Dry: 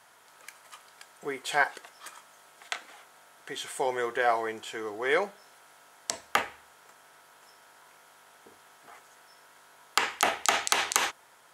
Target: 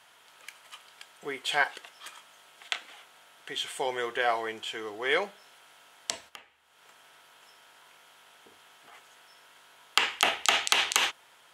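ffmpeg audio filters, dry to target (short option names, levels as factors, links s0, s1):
-filter_complex "[0:a]equalizer=f=3000:w=1.6:g=9.5,asplit=3[s0][s1][s2];[s0]afade=t=out:st=6.28:d=0.02[s3];[s1]acompressor=threshold=0.00447:ratio=4,afade=t=in:st=6.28:d=0.02,afade=t=out:st=8.92:d=0.02[s4];[s2]afade=t=in:st=8.92:d=0.02[s5];[s3][s4][s5]amix=inputs=3:normalize=0,volume=0.75"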